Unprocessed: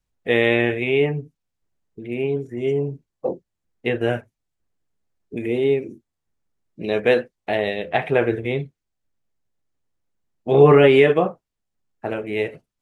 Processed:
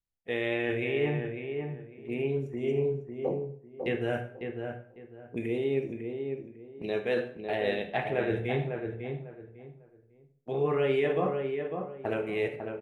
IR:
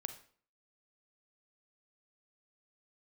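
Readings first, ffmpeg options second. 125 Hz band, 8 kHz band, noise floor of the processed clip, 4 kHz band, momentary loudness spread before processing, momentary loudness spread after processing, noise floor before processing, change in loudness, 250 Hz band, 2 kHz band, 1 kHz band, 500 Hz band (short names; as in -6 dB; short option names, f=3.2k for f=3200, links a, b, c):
-8.5 dB, n/a, -60 dBFS, -11.0 dB, 18 LU, 12 LU, -81 dBFS, -11.5 dB, -9.0 dB, -10.5 dB, -10.0 dB, -10.5 dB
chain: -filter_complex "[0:a]agate=range=-11dB:threshold=-32dB:ratio=16:detection=peak,areverse,acompressor=threshold=-22dB:ratio=6,areverse,asplit=2[a][b];[b]adelay=550,lowpass=f=1.8k:p=1,volume=-5.5dB,asplit=2[c][d];[d]adelay=550,lowpass=f=1.8k:p=1,volume=0.26,asplit=2[e][f];[f]adelay=550,lowpass=f=1.8k:p=1,volume=0.26[g];[a][c][e][g]amix=inputs=4:normalize=0[h];[1:a]atrim=start_sample=2205,asetrate=42777,aresample=44100[i];[h][i]afir=irnorm=-1:irlink=0,volume=-2dB"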